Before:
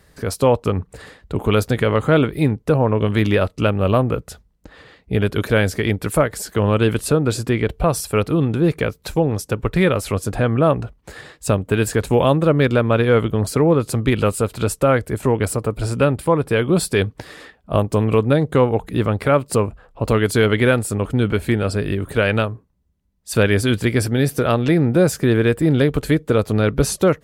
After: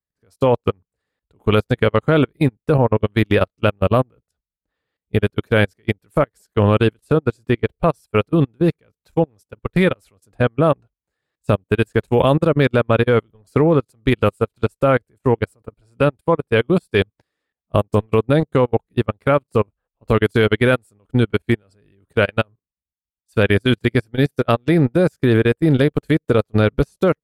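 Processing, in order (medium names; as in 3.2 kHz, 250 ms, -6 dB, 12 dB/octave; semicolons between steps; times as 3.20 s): level held to a coarse grid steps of 17 dB; upward expansion 2.5:1, over -38 dBFS; trim +5.5 dB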